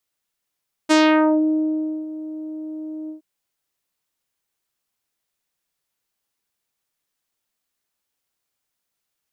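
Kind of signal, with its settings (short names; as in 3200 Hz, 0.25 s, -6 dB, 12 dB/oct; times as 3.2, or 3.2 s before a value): synth note saw D#4 24 dB/oct, low-pass 460 Hz, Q 0.94, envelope 4.5 oct, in 0.52 s, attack 22 ms, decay 1.15 s, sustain -17 dB, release 0.12 s, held 2.20 s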